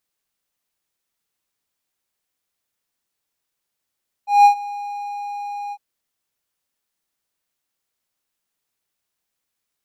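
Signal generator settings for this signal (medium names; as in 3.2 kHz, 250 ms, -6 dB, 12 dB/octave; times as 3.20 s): ADSR triangle 817 Hz, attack 177 ms, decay 98 ms, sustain -20.5 dB, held 1.45 s, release 54 ms -3.5 dBFS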